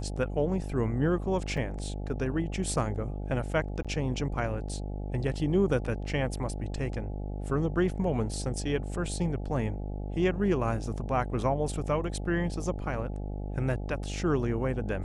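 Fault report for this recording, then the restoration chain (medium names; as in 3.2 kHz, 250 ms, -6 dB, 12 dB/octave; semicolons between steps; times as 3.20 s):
buzz 50 Hz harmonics 17 -35 dBFS
1.57 s: dropout 4.1 ms
3.83–3.85 s: dropout 16 ms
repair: de-hum 50 Hz, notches 17; interpolate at 1.57 s, 4.1 ms; interpolate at 3.83 s, 16 ms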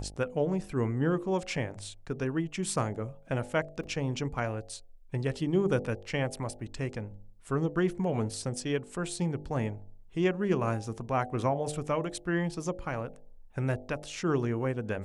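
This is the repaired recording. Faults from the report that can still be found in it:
nothing left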